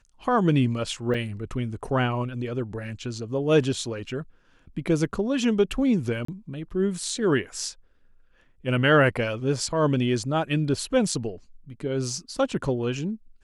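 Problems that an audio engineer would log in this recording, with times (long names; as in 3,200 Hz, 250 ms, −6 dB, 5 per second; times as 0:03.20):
0:01.14–0:01.15: drop-out 5.2 ms
0:06.25–0:06.28: drop-out 34 ms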